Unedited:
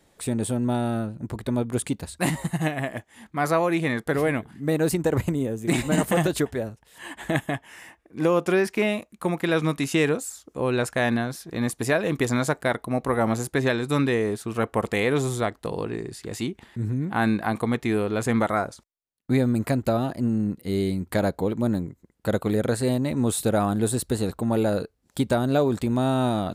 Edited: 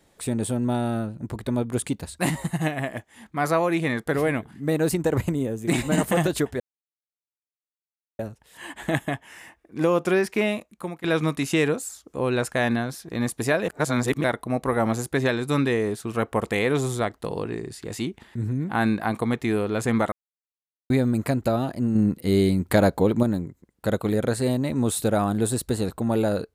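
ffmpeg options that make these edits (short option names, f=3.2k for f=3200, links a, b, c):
-filter_complex "[0:a]asplit=9[a][b][c][d][e][f][g][h][i];[a]atrim=end=6.6,asetpts=PTS-STARTPTS,afade=t=out:st=6.596:d=0.004:c=hsin,apad=pad_dur=1.59[j];[b]atrim=start=6.6:end=9.45,asetpts=PTS-STARTPTS,afade=t=in:d=0.004:c=hsin,afade=t=out:st=2.36:d=0.49:silence=0.16788[k];[c]atrim=start=9.45:end=12.092,asetpts=PTS-STARTPTS,afade=t=in:d=0.004:c=hsin:silence=0.16788[l];[d]atrim=start=12.088:end=12.652,asetpts=PTS-STARTPTS,areverse[m];[e]atrim=start=12.648:end=18.53,asetpts=PTS-STARTPTS,afade=t=out:st=5.878:d=0.004:c=hsin[n];[f]atrim=start=18.53:end=19.31,asetpts=PTS-STARTPTS,volume=0[o];[g]atrim=start=19.31:end=20.362,asetpts=PTS-STARTPTS,afade=t=in:d=0.004:c=hsin[p];[h]atrim=start=20.358:end=21.642,asetpts=PTS-STARTPTS,volume=5dB[q];[i]atrim=start=21.638[r];[j][k][l]concat=n=3:v=0:a=1[s];[s][m]acrossfade=d=0.004:c1=hsin:c2=hsin[t];[n][o][p]concat=n=3:v=0:a=1[u];[t][u]acrossfade=d=0.004:c1=hsin:c2=hsin[v];[v][q]acrossfade=d=0.004:c1=hsin:c2=hsin[w];[w][r]acrossfade=d=0.004:c1=hsin:c2=hsin"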